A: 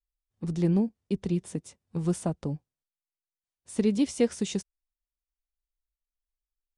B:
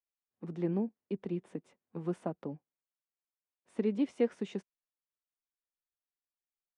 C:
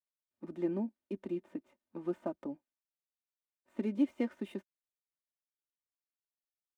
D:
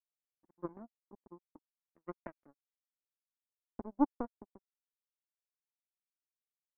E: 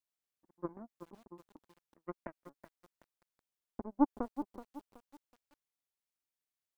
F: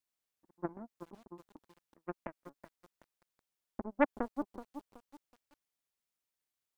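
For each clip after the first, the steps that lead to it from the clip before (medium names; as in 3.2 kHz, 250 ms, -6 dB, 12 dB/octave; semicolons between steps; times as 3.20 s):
three-band isolator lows -24 dB, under 190 Hz, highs -22 dB, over 2.7 kHz; trim -4 dB
median filter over 9 samples; comb 3.3 ms, depth 74%; trim -3 dB
Chebyshev low-pass 1.5 kHz, order 10; power-law waveshaper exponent 3; trim +5 dB
bit-crushed delay 375 ms, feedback 35%, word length 9-bit, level -11 dB; trim +1 dB
loudspeaker Doppler distortion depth 0.72 ms; trim +2 dB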